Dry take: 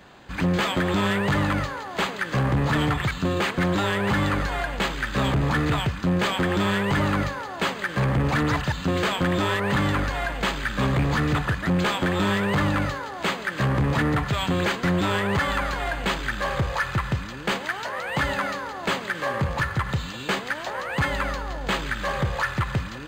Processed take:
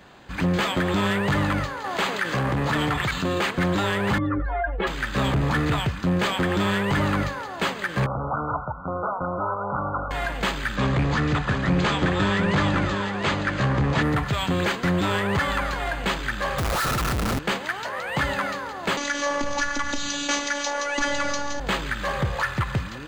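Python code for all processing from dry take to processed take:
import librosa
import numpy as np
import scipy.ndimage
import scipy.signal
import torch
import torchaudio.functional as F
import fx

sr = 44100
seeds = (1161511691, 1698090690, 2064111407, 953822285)

y = fx.chain(x, sr, fx.low_shelf(hz=200.0, db=-6.5),
    fx.env_flatten(amount_pct=50), at=(1.84, 3.46))
y = fx.chain(y, sr, fx.spec_expand(power=2.4),
    fx.low_shelf_res(hz=270.0, db=-6.5, q=3.0),
    fx.env_flatten(amount_pct=70), at=(4.18, 4.87))
y = fx.chain(y, sr, fx.brickwall_lowpass(high_hz=1500.0),
    fx.low_shelf_res(hz=480.0, db=-8.0, q=1.5), at=(8.06, 10.11))
y = fx.chain(y, sr, fx.lowpass(hz=7500.0, slope=24),
    fx.echo_single(ms=714, db=-5.5), at=(10.76, 14.03))
y = fx.chain(y, sr, fx.peak_eq(hz=1300.0, db=12.0, octaves=0.27),
    fx.schmitt(flips_db=-32.0), at=(16.58, 17.39))
y = fx.chain(y, sr, fx.lowpass_res(hz=6100.0, q=8.3),
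    fx.robotise(hz=287.0),
    fx.env_flatten(amount_pct=50), at=(18.97, 21.6))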